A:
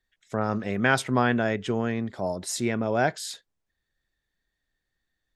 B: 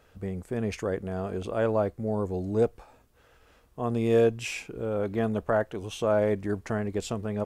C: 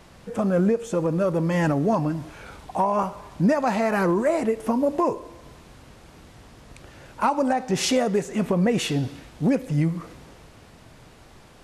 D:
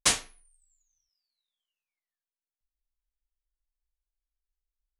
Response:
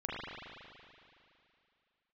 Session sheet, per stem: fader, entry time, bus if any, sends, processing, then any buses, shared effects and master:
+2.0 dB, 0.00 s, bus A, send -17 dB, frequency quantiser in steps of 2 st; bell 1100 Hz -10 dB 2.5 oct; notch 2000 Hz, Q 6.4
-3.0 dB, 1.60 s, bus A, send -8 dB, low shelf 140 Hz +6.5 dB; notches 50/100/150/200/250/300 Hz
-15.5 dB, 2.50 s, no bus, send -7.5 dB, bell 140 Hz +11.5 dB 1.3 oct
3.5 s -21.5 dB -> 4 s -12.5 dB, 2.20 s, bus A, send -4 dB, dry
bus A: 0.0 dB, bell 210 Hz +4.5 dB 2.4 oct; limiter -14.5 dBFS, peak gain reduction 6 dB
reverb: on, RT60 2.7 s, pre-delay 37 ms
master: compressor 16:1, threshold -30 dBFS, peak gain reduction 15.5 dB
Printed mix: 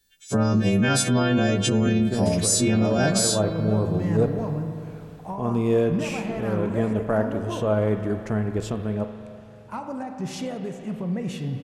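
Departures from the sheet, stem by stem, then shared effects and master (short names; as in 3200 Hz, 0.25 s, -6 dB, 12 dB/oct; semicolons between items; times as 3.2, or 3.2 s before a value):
stem A +2.0 dB -> +10.5 dB; stem B: missing notches 50/100/150/200/250/300 Hz; master: missing compressor 16:1, threshold -30 dBFS, peak gain reduction 15.5 dB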